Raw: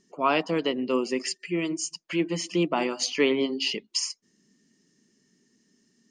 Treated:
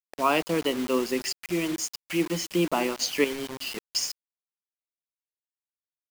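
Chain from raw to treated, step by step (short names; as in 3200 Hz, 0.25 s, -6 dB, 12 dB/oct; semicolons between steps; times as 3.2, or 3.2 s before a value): 3.24–3.77 resonator 160 Hz, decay 0.15 s, harmonics odd, mix 70%; bit-crush 6-bit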